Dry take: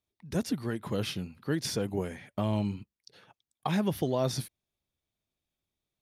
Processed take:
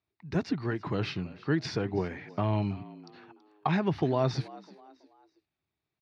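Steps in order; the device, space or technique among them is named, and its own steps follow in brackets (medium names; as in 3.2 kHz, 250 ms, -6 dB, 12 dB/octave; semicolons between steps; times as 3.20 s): frequency-shifting delay pedal into a guitar cabinet (frequency-shifting echo 327 ms, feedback 37%, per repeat +69 Hz, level -20 dB; cabinet simulation 88–4200 Hz, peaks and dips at 220 Hz -8 dB, 530 Hz -9 dB, 3.3 kHz -10 dB); trim +4.5 dB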